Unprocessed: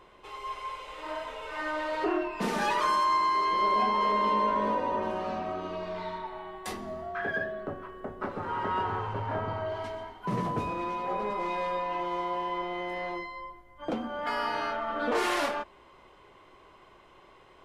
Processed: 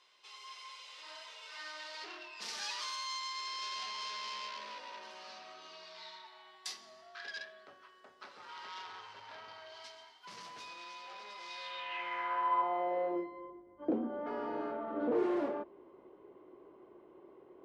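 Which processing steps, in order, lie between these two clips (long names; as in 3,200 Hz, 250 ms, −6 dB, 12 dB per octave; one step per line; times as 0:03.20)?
tube saturation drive 27 dB, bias 0.3
band-pass filter sweep 5,000 Hz → 350 Hz, 0:11.53–0:13.27
level +7 dB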